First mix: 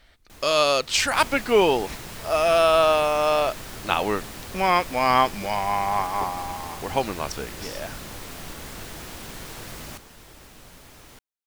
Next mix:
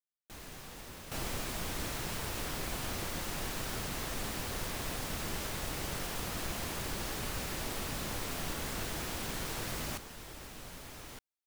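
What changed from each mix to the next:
speech: muted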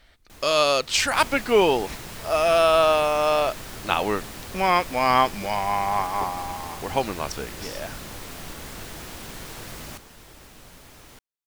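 speech: unmuted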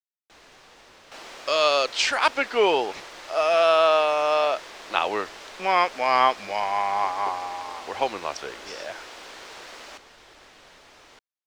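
speech: entry +1.05 s; second sound: add high-pass 290 Hz 12 dB/octave; master: add three-band isolator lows -15 dB, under 350 Hz, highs -22 dB, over 6.7 kHz

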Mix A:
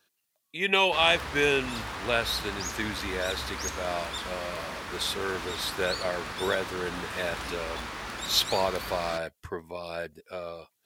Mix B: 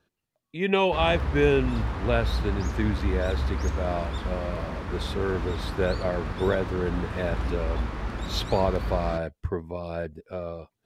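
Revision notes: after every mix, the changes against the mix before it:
master: add tilt EQ -4 dB/octave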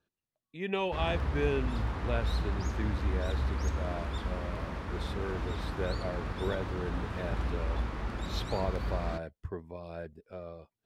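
speech -9.5 dB; background -4.0 dB

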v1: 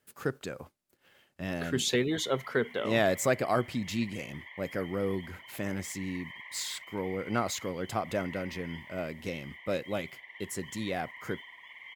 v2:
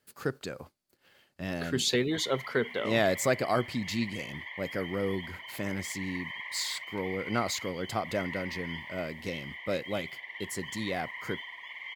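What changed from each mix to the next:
background +6.0 dB; master: add peaking EQ 4.5 kHz +7 dB 0.3 oct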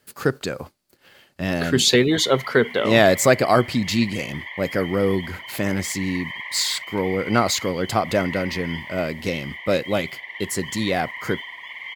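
speech +11.0 dB; background +7.0 dB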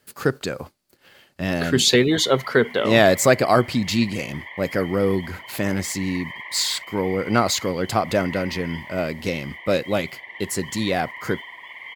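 background: add tilt EQ -3 dB/octave

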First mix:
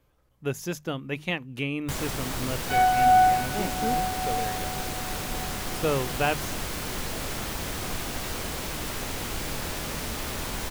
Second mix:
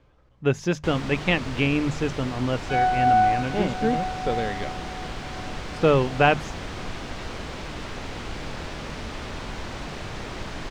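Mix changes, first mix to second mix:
speech +8.0 dB; first sound: entry -1.05 s; master: add distance through air 130 m

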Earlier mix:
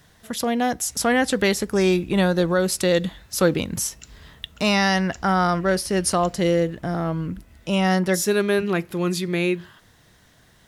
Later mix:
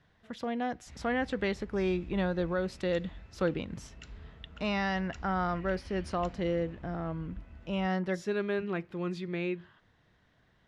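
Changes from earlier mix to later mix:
speech -11.0 dB; master: add low-pass 3 kHz 12 dB/octave

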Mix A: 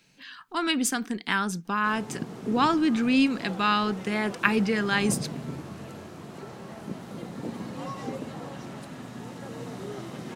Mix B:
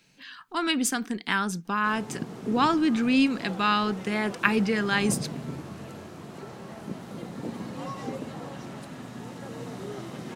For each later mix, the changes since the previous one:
no change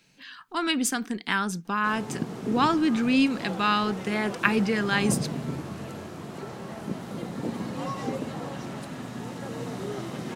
background +3.5 dB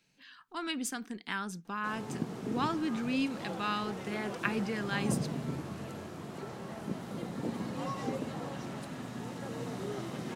speech -10.0 dB; background -4.5 dB

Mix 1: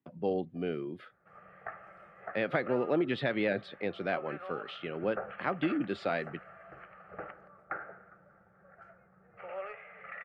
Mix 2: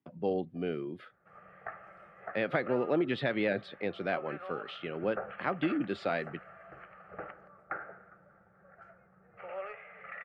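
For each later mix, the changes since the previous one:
no change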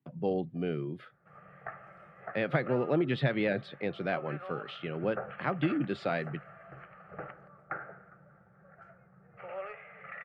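master: add peaking EQ 140 Hz +11 dB 0.53 oct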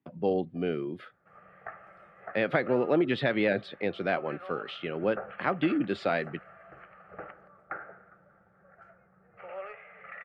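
speech +4.0 dB; master: add peaking EQ 140 Hz -11 dB 0.53 oct

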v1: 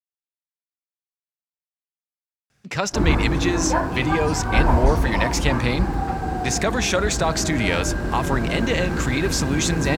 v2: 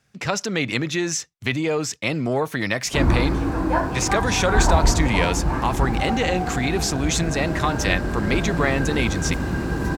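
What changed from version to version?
speech: entry -2.50 s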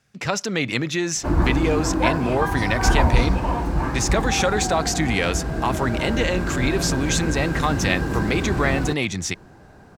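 background: entry -1.70 s

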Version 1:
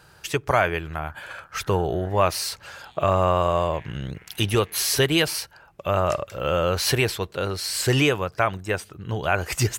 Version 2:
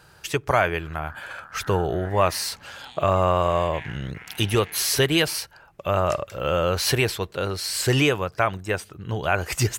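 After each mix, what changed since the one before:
background +9.0 dB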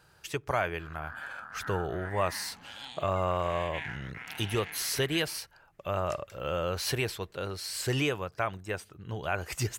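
speech -9.0 dB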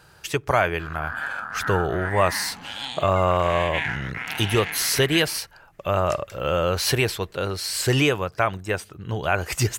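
speech +9.0 dB; background +12.0 dB

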